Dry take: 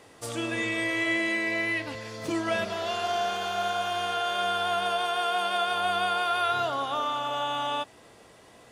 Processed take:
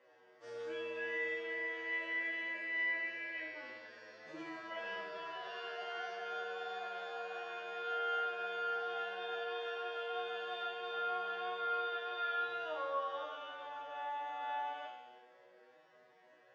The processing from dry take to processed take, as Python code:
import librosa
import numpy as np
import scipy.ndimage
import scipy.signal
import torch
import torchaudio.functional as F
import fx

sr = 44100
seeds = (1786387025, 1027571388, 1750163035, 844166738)

y = fx.high_shelf(x, sr, hz=3600.0, db=-10.5)
y = fx.resonator_bank(y, sr, root=47, chord='major', decay_s=0.67)
y = fx.stretch_vocoder(y, sr, factor=1.9)
y = fx.cabinet(y, sr, low_hz=320.0, low_slope=12, high_hz=5500.0, hz=(540.0, 1700.0, 3900.0), db=(6, 9, -4))
y = y * librosa.db_to_amplitude(7.5)